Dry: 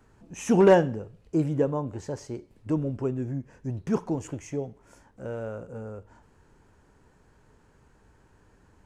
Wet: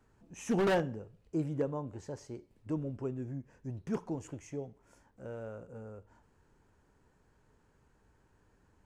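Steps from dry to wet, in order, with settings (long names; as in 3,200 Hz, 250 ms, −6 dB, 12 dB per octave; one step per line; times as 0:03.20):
wave folding −14 dBFS
level −8.5 dB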